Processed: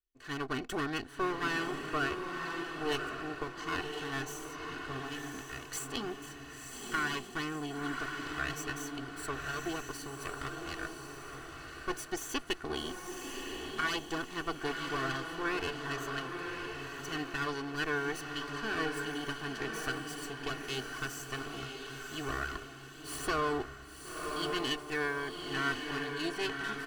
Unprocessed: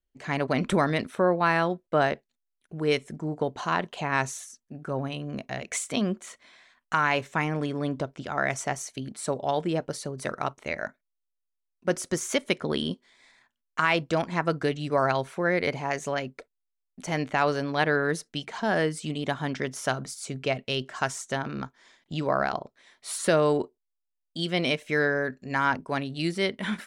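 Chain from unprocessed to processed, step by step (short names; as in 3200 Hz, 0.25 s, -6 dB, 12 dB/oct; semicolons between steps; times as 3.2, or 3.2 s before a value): minimum comb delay 0.66 ms; low shelf 260 Hz -5.5 dB; comb 2.7 ms, depth 74%; diffused feedback echo 1.036 s, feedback 41%, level -4 dB; gain -8.5 dB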